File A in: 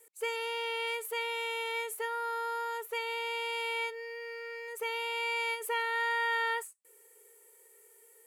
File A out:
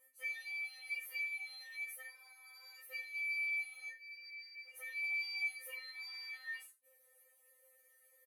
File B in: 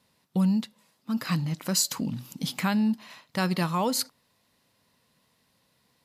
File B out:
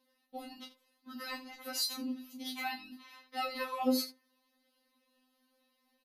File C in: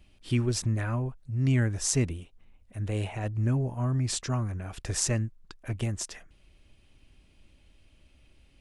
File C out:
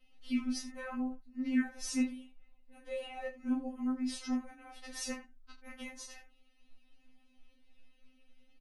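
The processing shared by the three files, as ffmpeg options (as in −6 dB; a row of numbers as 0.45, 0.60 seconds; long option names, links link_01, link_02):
-af "equalizer=frequency=7700:width_type=o:width=0.4:gain=-14.5,aecho=1:1:17|32|79:0.473|0.422|0.2,afftfilt=real='re*3.46*eq(mod(b,12),0)':imag='im*3.46*eq(mod(b,12),0)':win_size=2048:overlap=0.75,volume=-5dB"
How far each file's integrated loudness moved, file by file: −7.0, −9.0, −8.0 LU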